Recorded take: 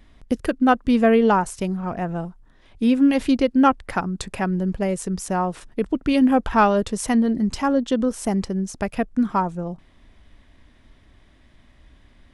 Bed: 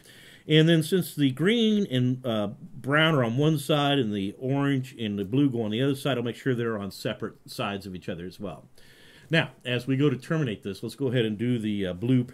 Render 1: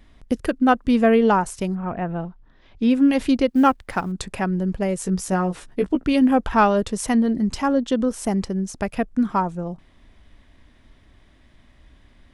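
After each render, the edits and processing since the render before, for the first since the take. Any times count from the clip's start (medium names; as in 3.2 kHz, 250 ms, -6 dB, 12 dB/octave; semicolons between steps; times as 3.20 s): 1.74–2.89 s: low-pass 2.7 kHz -> 6.8 kHz 24 dB/octave; 3.49–4.12 s: companding laws mixed up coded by A; 4.98–6.04 s: doubling 16 ms -4.5 dB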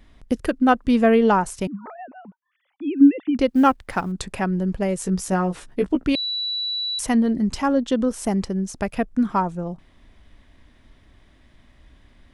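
1.67–3.39 s: formants replaced by sine waves; 6.15–6.99 s: bleep 3.94 kHz -23 dBFS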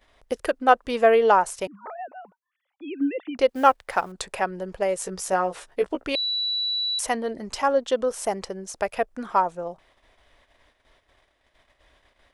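gate -51 dBFS, range -9 dB; resonant low shelf 350 Hz -13 dB, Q 1.5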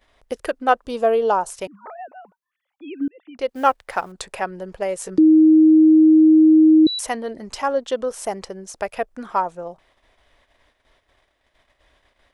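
0.85–1.50 s: peaking EQ 2 kHz -13.5 dB 0.75 oct; 3.08–3.67 s: fade in linear; 5.18–6.87 s: bleep 314 Hz -8 dBFS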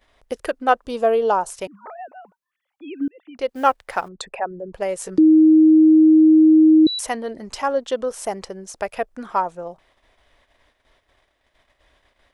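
4.08–4.74 s: resonances exaggerated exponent 2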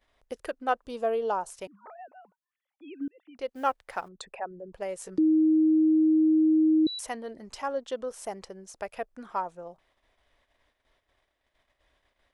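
trim -10 dB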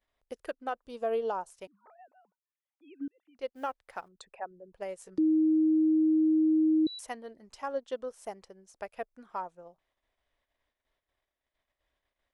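peak limiter -21 dBFS, peak gain reduction 7.5 dB; upward expansion 1.5:1, over -47 dBFS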